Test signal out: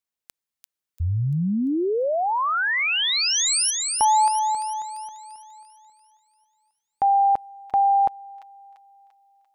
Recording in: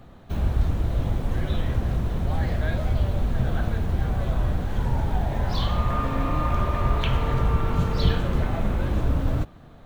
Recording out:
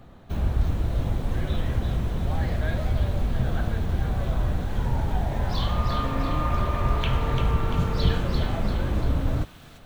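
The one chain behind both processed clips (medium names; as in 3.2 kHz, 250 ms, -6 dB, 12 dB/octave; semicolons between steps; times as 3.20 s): feedback echo behind a high-pass 343 ms, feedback 48%, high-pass 2.6 kHz, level -4 dB; trim -1 dB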